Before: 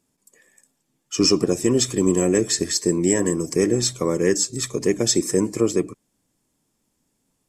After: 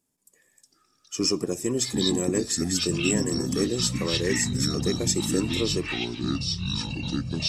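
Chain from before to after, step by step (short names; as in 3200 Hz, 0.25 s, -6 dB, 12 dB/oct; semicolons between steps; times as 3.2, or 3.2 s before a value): high shelf 9200 Hz +9 dB; echoes that change speed 0.251 s, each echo -6 st, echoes 3; gain -8 dB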